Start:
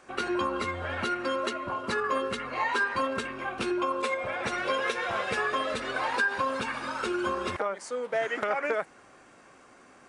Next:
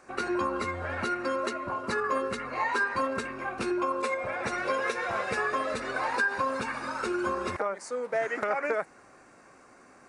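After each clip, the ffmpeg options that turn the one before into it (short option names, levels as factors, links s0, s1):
-af "equalizer=f=3200:w=3.7:g=-11"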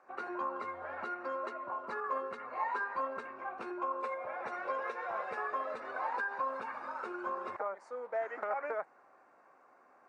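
-af "bandpass=f=860:t=q:w=1.3:csg=0,volume=0.631"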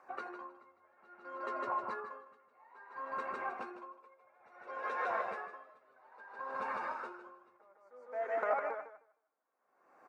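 -filter_complex "[0:a]flanger=delay=0.9:depth=9.2:regen=65:speed=0.23:shape=triangular,asplit=2[s0][s1];[s1]aecho=0:1:155|310|465|620|775:0.631|0.246|0.096|0.0374|0.0146[s2];[s0][s2]amix=inputs=2:normalize=0,aeval=exprs='val(0)*pow(10,-30*(0.5-0.5*cos(2*PI*0.59*n/s))/20)':c=same,volume=2.11"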